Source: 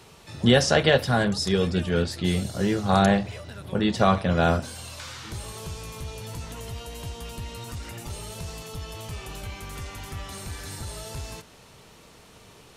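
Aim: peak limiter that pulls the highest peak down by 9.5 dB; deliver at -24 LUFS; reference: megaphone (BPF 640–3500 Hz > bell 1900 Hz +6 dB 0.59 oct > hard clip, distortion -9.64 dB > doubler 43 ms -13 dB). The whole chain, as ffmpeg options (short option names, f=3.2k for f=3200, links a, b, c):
-filter_complex "[0:a]alimiter=limit=-15dB:level=0:latency=1,highpass=640,lowpass=3.5k,equalizer=f=1.9k:t=o:w=0.59:g=6,asoftclip=type=hard:threshold=-27.5dB,asplit=2[a][b];[b]adelay=43,volume=-13dB[c];[a][c]amix=inputs=2:normalize=0,volume=12.5dB"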